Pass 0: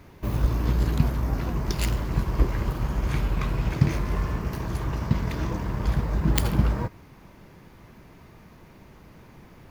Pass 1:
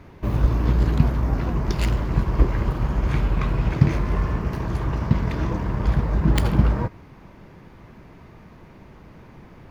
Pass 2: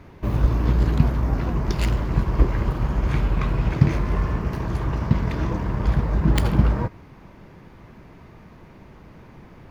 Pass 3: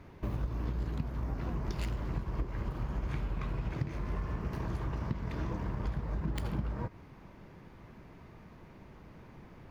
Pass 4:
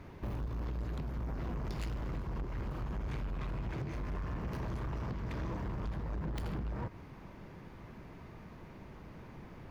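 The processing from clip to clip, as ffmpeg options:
-af "lowpass=f=2.8k:p=1,volume=4dB"
-af anull
-af "acompressor=threshold=-24dB:ratio=6,volume=-7dB"
-af "asoftclip=type=tanh:threshold=-36dB,volume=2.5dB"

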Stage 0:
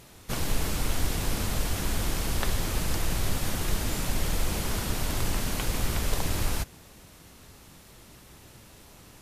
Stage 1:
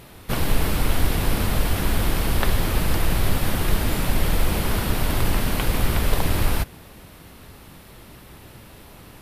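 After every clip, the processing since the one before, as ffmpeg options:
-af "equalizer=f=6.7k:t=o:w=0.95:g=-10.5,volume=7.5dB"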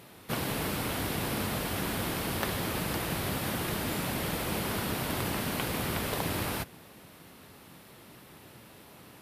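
-filter_complex "[0:a]highpass=130,asplit=2[a][b];[b]aeval=exprs='(mod(2.24*val(0)+1,2)-1)/2.24':c=same,volume=-8.5dB[c];[a][c]amix=inputs=2:normalize=0,volume=-8.5dB"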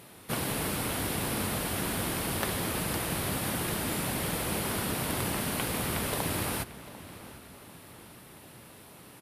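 -filter_complex "[0:a]equalizer=f=9.8k:t=o:w=0.55:g=6.5,asplit=2[a][b];[b]adelay=746,lowpass=f=4.8k:p=1,volume=-16dB,asplit=2[c][d];[d]adelay=746,lowpass=f=4.8k:p=1,volume=0.5,asplit=2[e][f];[f]adelay=746,lowpass=f=4.8k:p=1,volume=0.5,asplit=2[g][h];[h]adelay=746,lowpass=f=4.8k:p=1,volume=0.5[i];[a][c][e][g][i]amix=inputs=5:normalize=0"

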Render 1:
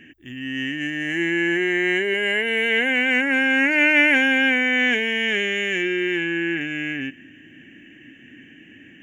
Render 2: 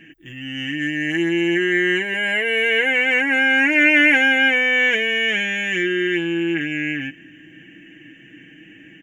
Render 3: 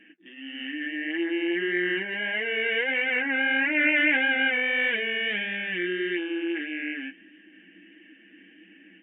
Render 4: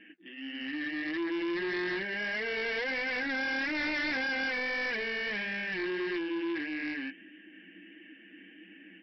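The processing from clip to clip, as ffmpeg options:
-af "aecho=1:1:6.2:0.72"
-af "afftfilt=real='re*between(b*sr/4096,180,3800)':imag='im*between(b*sr/4096,180,3800)':win_size=4096:overlap=0.75,flanger=delay=4.8:depth=7.6:regen=-44:speed=1.6:shape=triangular,volume=-4dB"
-filter_complex "[0:a]acrossover=split=2500[a][b];[b]acompressor=threshold=-45dB:ratio=4:attack=1:release=60[c];[a][c]amix=inputs=2:normalize=0,aresample=11025,asoftclip=type=tanh:threshold=-29.5dB,aresample=44100"

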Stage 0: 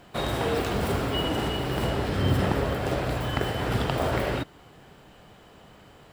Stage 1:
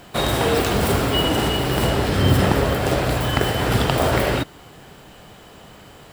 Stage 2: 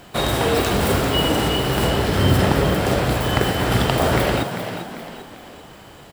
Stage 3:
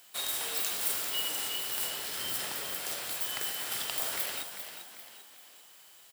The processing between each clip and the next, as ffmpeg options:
-af "highshelf=f=4.8k:g=7,volume=7dB"
-filter_complex "[0:a]asplit=6[a][b][c][d][e][f];[b]adelay=395,afreqshift=55,volume=-9dB[g];[c]adelay=790,afreqshift=110,volume=-16.5dB[h];[d]adelay=1185,afreqshift=165,volume=-24.1dB[i];[e]adelay=1580,afreqshift=220,volume=-31.6dB[j];[f]adelay=1975,afreqshift=275,volume=-39.1dB[k];[a][g][h][i][j][k]amix=inputs=6:normalize=0"
-af "aderivative,volume=-3.5dB"

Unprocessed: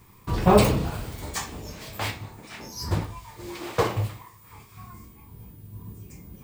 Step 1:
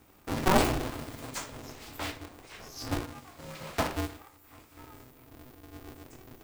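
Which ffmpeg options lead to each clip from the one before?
-af "aeval=exprs='val(0)*sgn(sin(2*PI*190*n/s))':c=same,volume=-6.5dB"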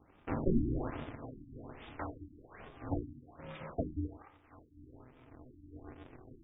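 -af "afftfilt=real='re*lt(b*sr/1024,330*pow(3800/330,0.5+0.5*sin(2*PI*1.2*pts/sr)))':imag='im*lt(b*sr/1024,330*pow(3800/330,0.5+0.5*sin(2*PI*1.2*pts/sr)))':win_size=1024:overlap=0.75,volume=-3dB"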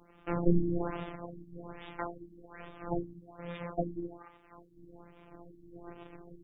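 -af "afftfilt=real='hypot(re,im)*cos(PI*b)':imag='0':win_size=1024:overlap=0.75,volume=7.5dB"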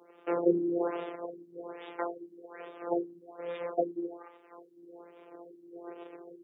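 -af "highpass=f=430:t=q:w=3.6"

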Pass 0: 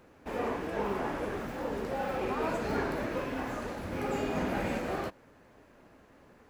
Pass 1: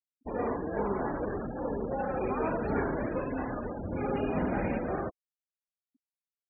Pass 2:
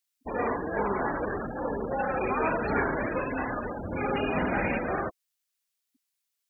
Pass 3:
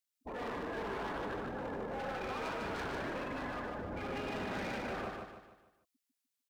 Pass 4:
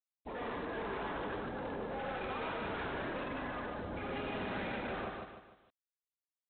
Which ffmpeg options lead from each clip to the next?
-af "lowshelf=f=420:g=3.5,afftfilt=real='re*gte(hypot(re,im),0.02)':imag='im*gte(hypot(re,im),0.02)':win_size=1024:overlap=0.75"
-af "tiltshelf=f=1.3k:g=-7.5,volume=7.5dB"
-filter_complex "[0:a]volume=31dB,asoftclip=hard,volume=-31dB,asplit=2[a][b];[b]aecho=0:1:150|300|450|600|750:0.668|0.287|0.124|0.0531|0.0228[c];[a][c]amix=inputs=2:normalize=0,volume=-7.5dB"
-ar 8000 -c:a adpcm_g726 -b:a 24k

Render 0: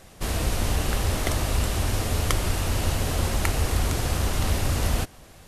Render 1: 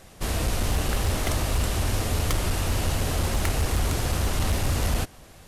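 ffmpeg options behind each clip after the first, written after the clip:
-af "volume=17.5dB,asoftclip=hard,volume=-17.5dB"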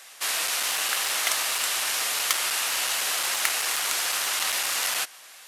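-af "highpass=1.4k,volume=8dB"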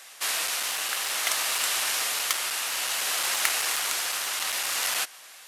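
-af "tremolo=f=0.58:d=0.31"

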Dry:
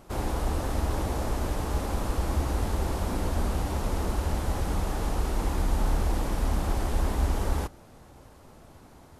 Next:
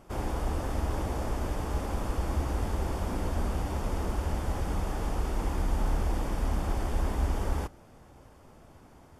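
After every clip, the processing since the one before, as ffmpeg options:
-af "highshelf=f=7k:g=-5,bandreject=f=4k:w=7.5,volume=-2.5dB"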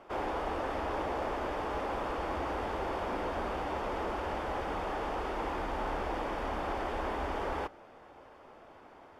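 -filter_complex "[0:a]acrossover=split=330 3800:gain=0.126 1 0.1[a][b][c];[a][b][c]amix=inputs=3:normalize=0,asplit=2[d][e];[e]asoftclip=type=hard:threshold=-38.5dB,volume=-8.5dB[f];[d][f]amix=inputs=2:normalize=0,volume=2dB"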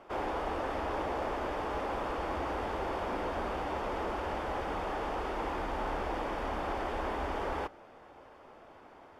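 -af anull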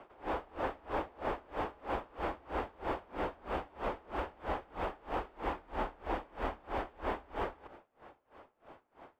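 -filter_complex "[0:a]acrossover=split=130|480|4700[a][b][c][d];[d]acrusher=samples=8:mix=1:aa=0.000001[e];[a][b][c][e]amix=inputs=4:normalize=0,aeval=exprs='val(0)*pow(10,-28*(0.5-0.5*cos(2*PI*3.1*n/s))/20)':c=same,volume=2dB"

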